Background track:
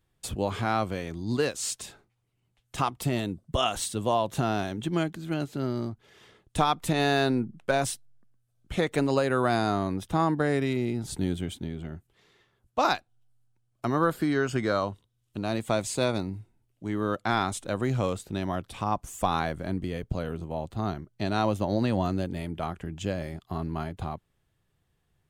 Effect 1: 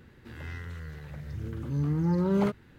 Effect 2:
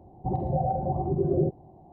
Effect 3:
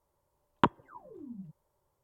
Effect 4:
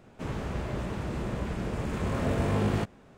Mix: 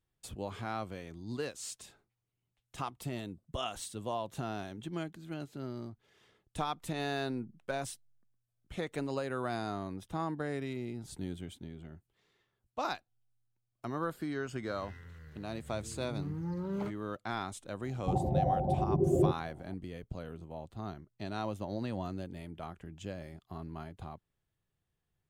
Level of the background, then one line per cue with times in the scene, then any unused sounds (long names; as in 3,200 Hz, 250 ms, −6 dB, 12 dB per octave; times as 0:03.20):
background track −11 dB
0:14.39: mix in 1 −11 dB
0:17.82: mix in 2 −2.5 dB
not used: 3, 4